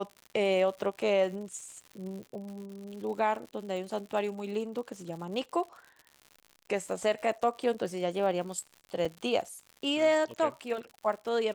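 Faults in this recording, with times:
surface crackle 110 per second −40 dBFS
0:09.05–0:09.06: drop-out 5.1 ms

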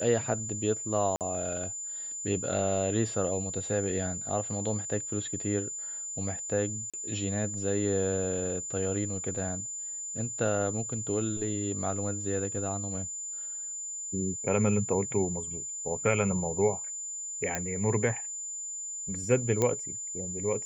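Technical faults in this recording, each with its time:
whistle 7,100 Hz −35 dBFS
0:01.16–0:01.21: drop-out 48 ms
0:06.90–0:06.94: drop-out 36 ms
0:17.55: click −14 dBFS
0:19.62: click −13 dBFS

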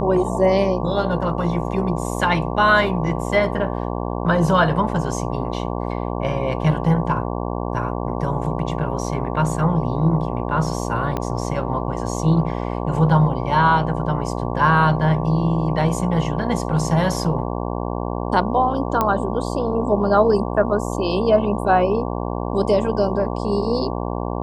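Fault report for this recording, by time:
mains buzz 60 Hz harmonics 19 −25 dBFS
0:11.17: click −11 dBFS
0:19.01: click −6 dBFS

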